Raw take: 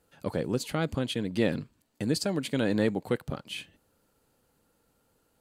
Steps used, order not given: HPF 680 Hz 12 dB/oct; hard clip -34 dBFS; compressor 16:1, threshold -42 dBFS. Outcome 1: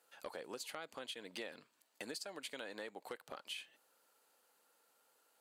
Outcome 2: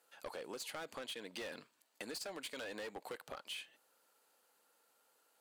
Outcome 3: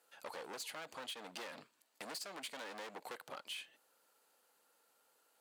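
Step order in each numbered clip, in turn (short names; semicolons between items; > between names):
HPF > compressor > hard clip; HPF > hard clip > compressor; hard clip > HPF > compressor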